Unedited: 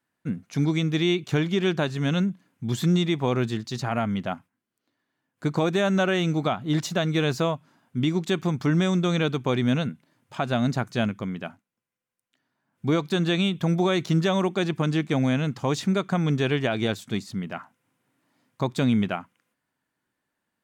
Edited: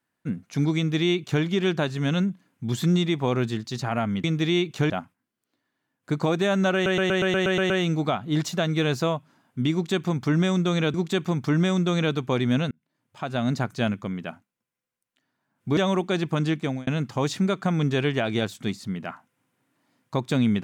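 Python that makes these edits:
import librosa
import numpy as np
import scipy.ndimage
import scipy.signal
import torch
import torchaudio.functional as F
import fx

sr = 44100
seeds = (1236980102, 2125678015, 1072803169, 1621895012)

y = fx.edit(x, sr, fx.duplicate(start_s=0.77, length_s=0.66, to_s=4.24),
    fx.stutter(start_s=6.08, slice_s=0.12, count=9),
    fx.repeat(start_s=8.11, length_s=1.21, count=2),
    fx.fade_in_span(start_s=9.88, length_s=0.86),
    fx.cut(start_s=12.94, length_s=1.3),
    fx.fade_out_span(start_s=14.93, length_s=0.41, curve='qsin'), tone=tone)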